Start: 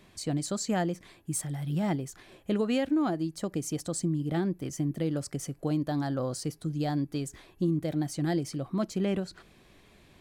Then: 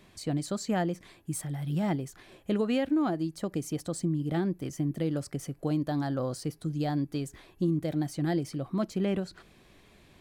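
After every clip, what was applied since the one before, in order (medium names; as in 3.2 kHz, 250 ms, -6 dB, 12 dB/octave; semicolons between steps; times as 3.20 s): dynamic bell 7 kHz, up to -6 dB, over -51 dBFS, Q 1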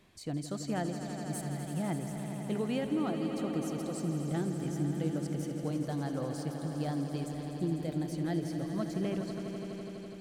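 echo with a slow build-up 83 ms, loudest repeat 5, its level -11 dB; trim -6 dB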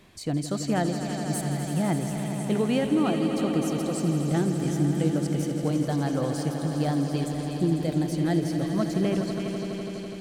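repeats whose band climbs or falls 347 ms, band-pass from 3 kHz, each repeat 0.7 oct, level -5 dB; trim +8.5 dB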